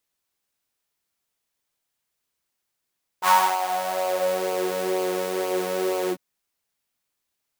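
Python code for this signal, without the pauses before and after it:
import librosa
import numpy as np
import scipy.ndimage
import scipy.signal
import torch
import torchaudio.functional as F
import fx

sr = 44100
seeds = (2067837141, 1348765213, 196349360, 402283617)

y = fx.sub_patch_pwm(sr, seeds[0], note=54, wave2='saw', interval_st=0, detune_cents=16, level2_db=-9.0, sub_db=-8, noise_db=-8.5, kind='highpass', cutoff_hz=250.0, q=6.4, env_oct=2.0, env_decay_s=1.42, env_sustain_pct=40, attack_ms=57.0, decay_s=0.29, sustain_db=-11, release_s=0.07, note_s=2.88, lfo_hz=2.1, width_pct=29, width_swing_pct=19)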